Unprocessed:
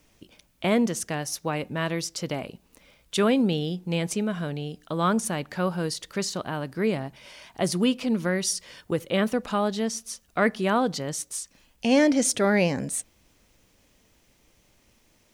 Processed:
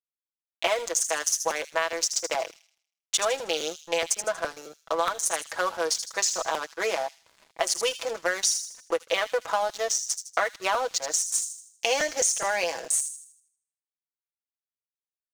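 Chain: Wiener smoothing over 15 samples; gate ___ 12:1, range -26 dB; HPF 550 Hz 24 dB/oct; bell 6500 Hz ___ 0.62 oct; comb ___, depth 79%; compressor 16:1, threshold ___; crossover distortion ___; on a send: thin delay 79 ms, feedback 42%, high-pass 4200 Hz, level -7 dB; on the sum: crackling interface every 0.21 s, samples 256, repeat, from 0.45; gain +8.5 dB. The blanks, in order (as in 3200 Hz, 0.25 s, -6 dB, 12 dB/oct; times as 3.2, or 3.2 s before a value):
-59 dBFS, +10 dB, 6.1 ms, -29 dBFS, -49 dBFS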